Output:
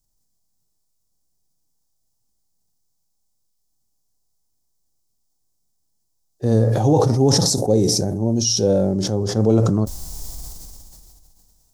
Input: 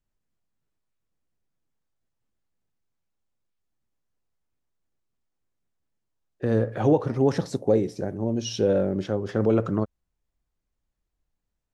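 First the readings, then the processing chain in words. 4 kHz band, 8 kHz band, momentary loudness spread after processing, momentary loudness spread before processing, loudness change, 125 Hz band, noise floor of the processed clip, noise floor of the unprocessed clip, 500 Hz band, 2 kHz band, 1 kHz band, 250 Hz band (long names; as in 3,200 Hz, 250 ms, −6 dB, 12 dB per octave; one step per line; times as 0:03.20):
+16.0 dB, +20.0 dB, 18 LU, 7 LU, +6.5 dB, +9.5 dB, −70 dBFS, −81 dBFS, +4.0 dB, −1.0 dB, +6.5 dB, +6.0 dB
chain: drawn EQ curve 120 Hz 0 dB, 550 Hz −4 dB, 790 Hz +1 dB, 1,500 Hz −11 dB, 2,600 Hz −10 dB, 5,200 Hz +12 dB
harmonic and percussive parts rebalanced harmonic +8 dB
level that may fall only so fast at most 23 dB per second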